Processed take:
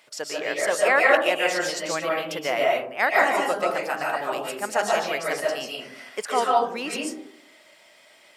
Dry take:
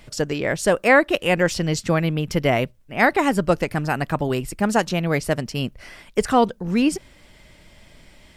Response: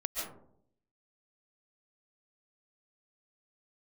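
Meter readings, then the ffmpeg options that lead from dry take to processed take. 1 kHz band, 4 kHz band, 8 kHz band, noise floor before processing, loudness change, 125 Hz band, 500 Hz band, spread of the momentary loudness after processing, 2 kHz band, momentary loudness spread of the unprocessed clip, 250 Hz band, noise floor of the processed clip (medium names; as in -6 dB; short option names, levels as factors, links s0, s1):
0.0 dB, 0.0 dB, -0.5 dB, -52 dBFS, -2.5 dB, -23.0 dB, -2.0 dB, 12 LU, 0.0 dB, 9 LU, -13.0 dB, -54 dBFS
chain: -filter_complex "[0:a]highpass=600[s0];[1:a]atrim=start_sample=2205[s1];[s0][s1]afir=irnorm=-1:irlink=0,volume=0.708"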